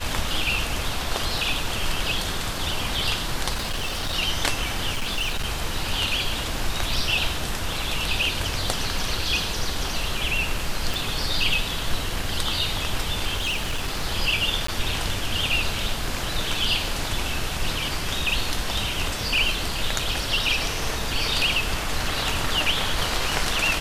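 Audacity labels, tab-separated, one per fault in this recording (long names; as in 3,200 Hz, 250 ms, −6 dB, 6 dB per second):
3.540000	4.140000	clipping −23 dBFS
4.920000	5.450000	clipping −21.5 dBFS
10.940000	10.940000	click
13.360000	14.030000	clipping −21.5 dBFS
14.670000	14.680000	drop-out 14 ms
19.990000	19.990000	drop-out 3.7 ms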